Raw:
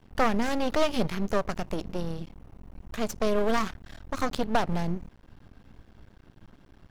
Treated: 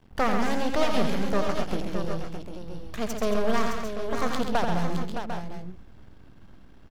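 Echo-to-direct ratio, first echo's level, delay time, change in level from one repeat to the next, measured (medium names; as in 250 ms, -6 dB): -1.5 dB, -7.5 dB, 86 ms, no regular repeats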